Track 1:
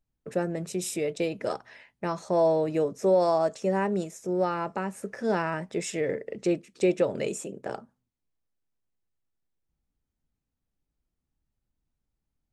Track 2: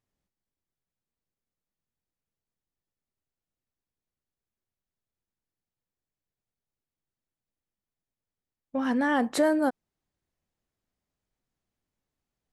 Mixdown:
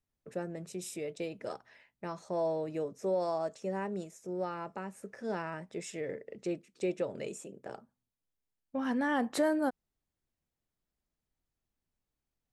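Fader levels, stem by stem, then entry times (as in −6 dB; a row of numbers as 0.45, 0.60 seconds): −9.5, −5.5 decibels; 0.00, 0.00 seconds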